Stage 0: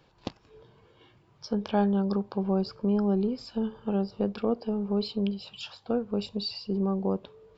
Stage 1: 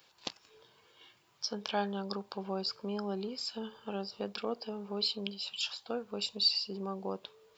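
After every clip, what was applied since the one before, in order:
spectral tilt +4.5 dB per octave
level −3 dB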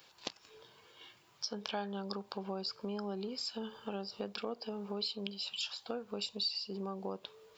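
downward compressor 2.5 to 1, threshold −41 dBFS, peak gain reduction 12 dB
level +3 dB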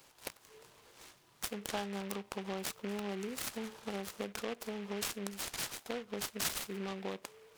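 short delay modulated by noise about 1,900 Hz, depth 0.11 ms

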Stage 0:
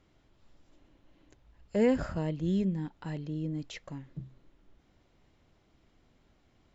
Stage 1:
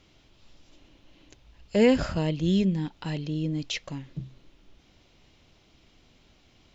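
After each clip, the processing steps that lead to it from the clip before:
flat-topped bell 3,900 Hz +8.5 dB
level +5.5 dB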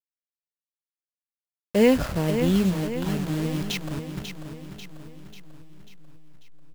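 hold until the input has moved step −31.5 dBFS
repeating echo 542 ms, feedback 52%, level −8.5 dB
level +2 dB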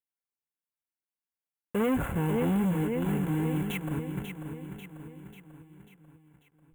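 hard clipping −23.5 dBFS, distortion −6 dB
Butterworth band-reject 4,900 Hz, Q 0.83
notch comb filter 620 Hz

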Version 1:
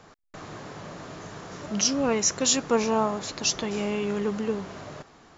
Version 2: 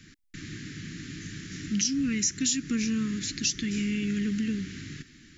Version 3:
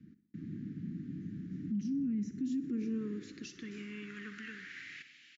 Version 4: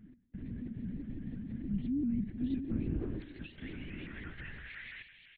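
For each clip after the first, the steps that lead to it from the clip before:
Chebyshev band-stop filter 300–1,800 Hz, order 3; dynamic equaliser 3,000 Hz, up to −3 dB, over −42 dBFS, Q 0.89; downward compressor 4 to 1, threshold −29 dBFS, peak gain reduction 8.5 dB; level +4.5 dB
band-pass filter sweep 210 Hz → 2,700 Hz, 0:02.23–0:05.18; repeating echo 62 ms, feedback 55%, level −14 dB; brickwall limiter −32 dBFS, peak gain reduction 10 dB; level +3 dB
linear-prediction vocoder at 8 kHz whisper; pitch modulation by a square or saw wave saw up 5.9 Hz, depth 160 cents; level +1 dB

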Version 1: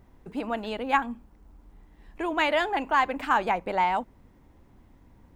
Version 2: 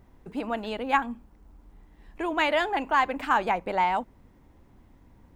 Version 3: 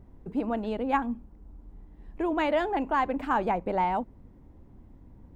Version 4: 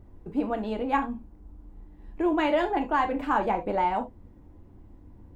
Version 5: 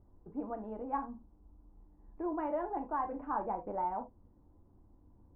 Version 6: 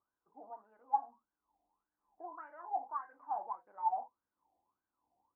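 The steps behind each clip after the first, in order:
no processing that can be heard
tilt shelving filter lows +7.5 dB, about 880 Hz; level −2.5 dB
reverb whose tail is shaped and stops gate 100 ms falling, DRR 4.5 dB
transistor ladder low-pass 1,400 Hz, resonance 30%; level −5.5 dB
LFO wah 1.7 Hz 720–1,600 Hz, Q 15; level +7.5 dB

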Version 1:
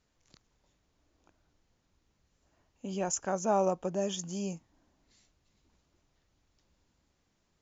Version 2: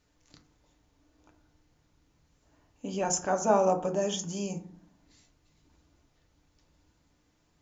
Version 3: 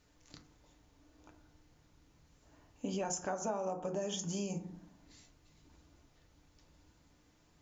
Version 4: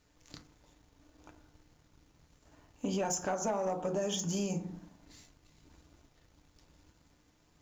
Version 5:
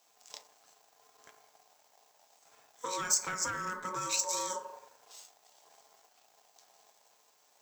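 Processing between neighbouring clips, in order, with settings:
feedback delay network reverb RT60 0.5 s, low-frequency decay 1.45×, high-frequency decay 0.45×, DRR 3.5 dB; level +3 dB
downward compressor 8 to 1, threshold −36 dBFS, peak gain reduction 17.5 dB; level +2 dB
leveller curve on the samples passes 1; level +1 dB
ring modulation 740 Hz; RIAA equalisation recording

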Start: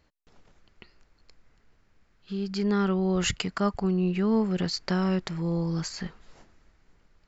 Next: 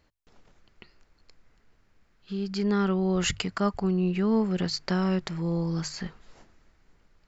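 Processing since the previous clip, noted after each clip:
mains-hum notches 50/100/150 Hz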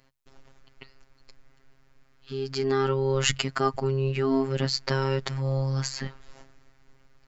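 phases set to zero 134 Hz
level +5.5 dB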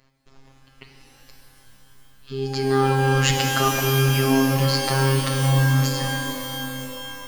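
reverb with rising layers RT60 3.2 s, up +12 semitones, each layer −2 dB, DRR 2.5 dB
level +2 dB

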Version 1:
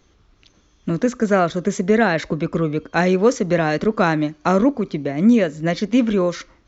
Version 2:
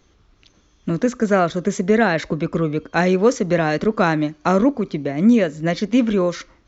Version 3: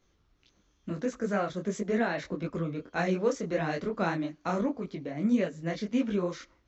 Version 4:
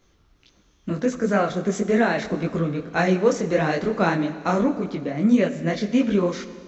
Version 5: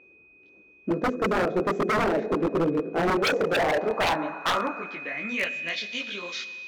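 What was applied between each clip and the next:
no processing that can be heard
micro pitch shift up and down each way 57 cents; level −8.5 dB
four-comb reverb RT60 2.2 s, combs from 28 ms, DRR 12 dB; level +8.5 dB
steady tone 2,500 Hz −38 dBFS; band-pass filter sweep 400 Hz → 3,600 Hz, 0:03.07–0:05.96; wave folding −26 dBFS; level +8 dB

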